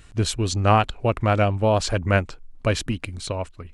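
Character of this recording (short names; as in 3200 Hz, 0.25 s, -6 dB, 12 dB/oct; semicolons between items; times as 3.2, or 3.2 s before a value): noise floor -49 dBFS; spectral tilt -5.5 dB/oct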